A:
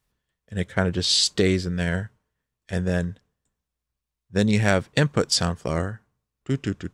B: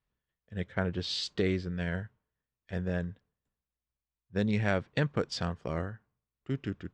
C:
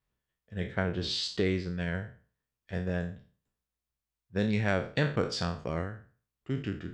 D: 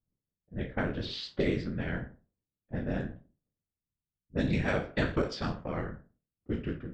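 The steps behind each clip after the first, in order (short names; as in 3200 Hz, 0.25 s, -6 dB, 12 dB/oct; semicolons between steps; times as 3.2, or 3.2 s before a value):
LPF 3500 Hz 12 dB/oct; gain -8.5 dB
spectral trails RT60 0.40 s
low-pass opened by the level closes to 400 Hz, open at -24 dBFS; whisperiser; gain -1 dB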